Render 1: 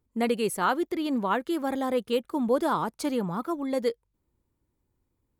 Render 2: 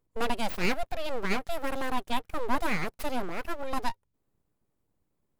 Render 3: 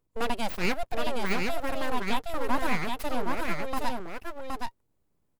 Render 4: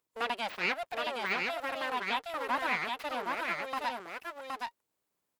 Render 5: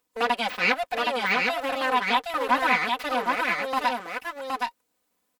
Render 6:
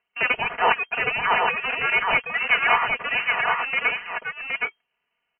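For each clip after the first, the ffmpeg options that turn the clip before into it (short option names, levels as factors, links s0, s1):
-af "aeval=exprs='abs(val(0))':c=same"
-af "aecho=1:1:769:0.668"
-filter_complex "[0:a]acrossover=split=4200[s0][s1];[s1]acompressor=threshold=0.00126:ratio=4:attack=1:release=60[s2];[s0][s2]amix=inputs=2:normalize=0,highpass=f=1200:p=1,volume=1.33"
-af "aecho=1:1:4:0.8,volume=2.11"
-af "highshelf=f=2300:g=10.5,lowpass=f=2700:t=q:w=0.5098,lowpass=f=2700:t=q:w=0.6013,lowpass=f=2700:t=q:w=0.9,lowpass=f=2700:t=q:w=2.563,afreqshift=-3200"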